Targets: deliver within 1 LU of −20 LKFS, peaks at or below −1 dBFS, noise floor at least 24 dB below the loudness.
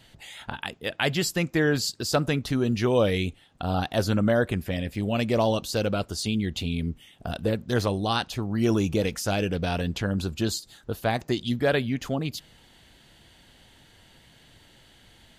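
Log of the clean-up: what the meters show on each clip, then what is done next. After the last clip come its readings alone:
integrated loudness −26.5 LKFS; sample peak −8.5 dBFS; target loudness −20.0 LKFS
→ level +6.5 dB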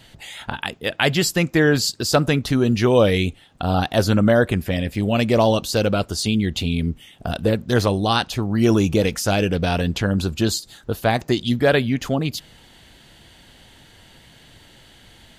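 integrated loudness −20.0 LKFS; sample peak −2.0 dBFS; background noise floor −50 dBFS

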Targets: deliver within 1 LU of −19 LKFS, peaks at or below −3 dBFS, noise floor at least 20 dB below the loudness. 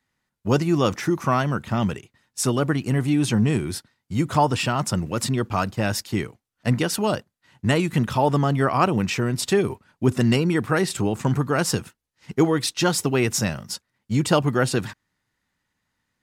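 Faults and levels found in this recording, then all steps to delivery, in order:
integrated loudness −23.0 LKFS; sample peak −5.5 dBFS; target loudness −19.0 LKFS
→ level +4 dB
brickwall limiter −3 dBFS

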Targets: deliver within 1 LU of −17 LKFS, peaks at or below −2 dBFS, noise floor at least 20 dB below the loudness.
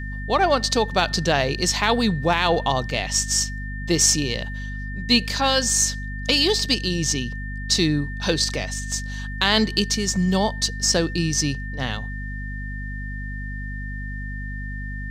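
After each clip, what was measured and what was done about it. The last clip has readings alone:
mains hum 50 Hz; hum harmonics up to 250 Hz; level of the hum −28 dBFS; interfering tone 1,800 Hz; level of the tone −35 dBFS; integrated loudness −22.0 LKFS; sample peak −3.5 dBFS; target loudness −17.0 LKFS
→ mains-hum notches 50/100/150/200/250 Hz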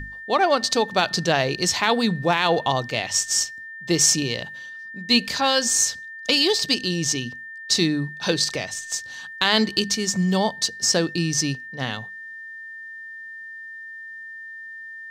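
mains hum none found; interfering tone 1,800 Hz; level of the tone −35 dBFS
→ notch filter 1,800 Hz, Q 30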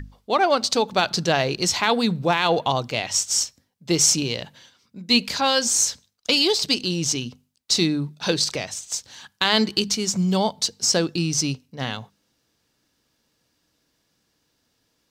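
interfering tone none found; integrated loudness −21.5 LKFS; sample peak −5.0 dBFS; target loudness −17.0 LKFS
→ level +4.5 dB
brickwall limiter −2 dBFS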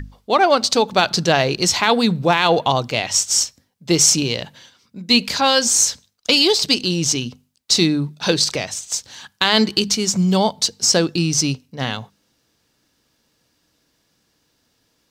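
integrated loudness −17.0 LKFS; sample peak −2.0 dBFS; background noise floor −66 dBFS

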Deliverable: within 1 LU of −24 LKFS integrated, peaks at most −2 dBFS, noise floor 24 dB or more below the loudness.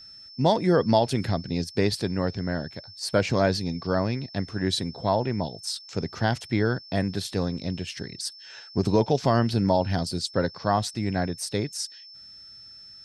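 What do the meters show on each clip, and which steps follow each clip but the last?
interfering tone 5,300 Hz; level of the tone −44 dBFS; integrated loudness −26.5 LKFS; sample peak −7.5 dBFS; target loudness −24.0 LKFS
→ notch filter 5,300 Hz, Q 30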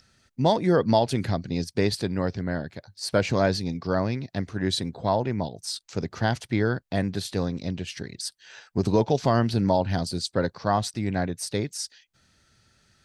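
interfering tone none found; integrated loudness −26.5 LKFS; sample peak −7.5 dBFS; target loudness −24.0 LKFS
→ level +2.5 dB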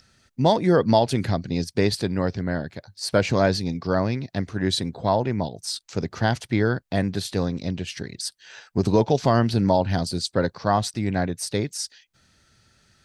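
integrated loudness −24.0 LKFS; sample peak −5.0 dBFS; background noise floor −63 dBFS

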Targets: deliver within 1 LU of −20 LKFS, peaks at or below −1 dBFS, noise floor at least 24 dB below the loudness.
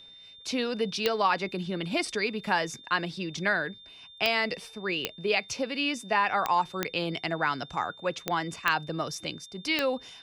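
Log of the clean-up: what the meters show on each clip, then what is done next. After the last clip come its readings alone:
number of clicks 8; interfering tone 3,600 Hz; level of the tone −48 dBFS; integrated loudness −29.0 LKFS; sample peak −8.5 dBFS; target loudness −20.0 LKFS
→ click removal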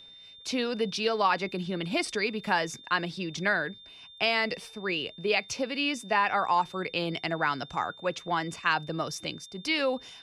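number of clicks 0; interfering tone 3,600 Hz; level of the tone −48 dBFS
→ notch filter 3,600 Hz, Q 30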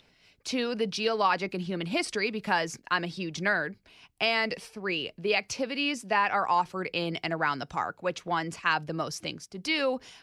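interfering tone none found; integrated loudness −29.5 LKFS; sample peak −12.5 dBFS; target loudness −20.0 LKFS
→ level +9.5 dB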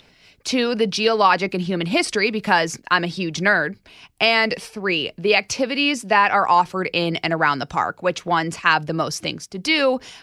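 integrated loudness −20.0 LKFS; sample peak −3.0 dBFS; background noise floor −55 dBFS

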